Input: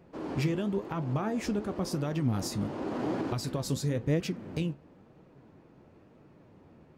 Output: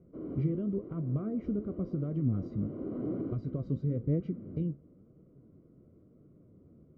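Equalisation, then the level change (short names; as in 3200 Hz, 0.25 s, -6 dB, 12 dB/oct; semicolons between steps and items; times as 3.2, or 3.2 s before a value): running mean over 51 samples; air absorption 190 m; 0.0 dB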